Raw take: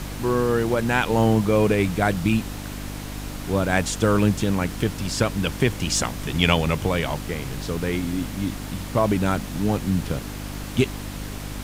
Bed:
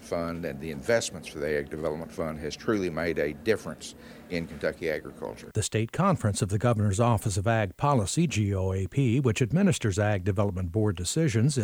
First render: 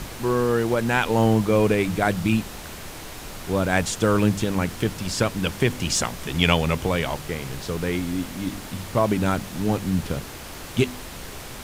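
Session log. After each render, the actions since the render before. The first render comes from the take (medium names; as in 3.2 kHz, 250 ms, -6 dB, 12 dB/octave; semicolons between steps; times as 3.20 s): de-hum 50 Hz, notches 6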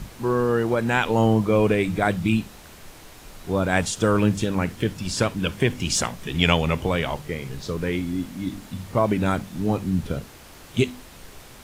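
noise print and reduce 8 dB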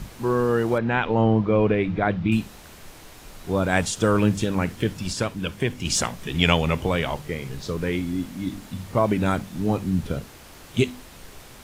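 0.78–2.32 s: distance through air 260 m; 5.13–5.85 s: gain -3.5 dB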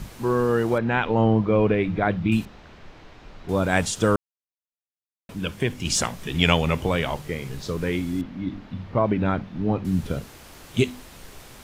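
2.45–3.49 s: distance through air 210 m; 4.16–5.29 s: mute; 8.21–9.85 s: distance through air 270 m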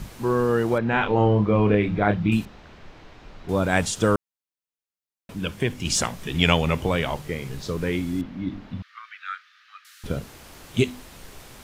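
0.90–2.33 s: doubling 29 ms -5.5 dB; 8.82–10.04 s: rippled Chebyshev high-pass 1.2 kHz, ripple 3 dB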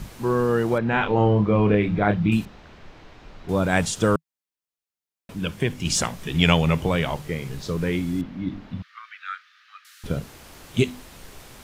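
dynamic bell 160 Hz, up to +5 dB, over -39 dBFS, Q 3.9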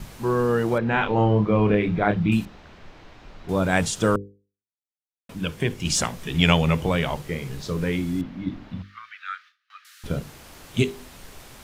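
gate with hold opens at -45 dBFS; hum notches 50/100/150/200/250/300/350/400/450/500 Hz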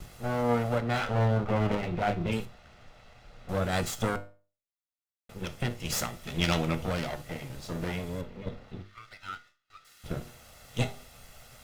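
comb filter that takes the minimum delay 1.5 ms; feedback comb 120 Hz, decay 0.31 s, harmonics all, mix 60%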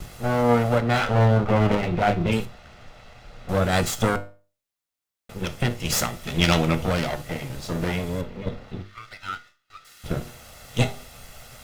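trim +7.5 dB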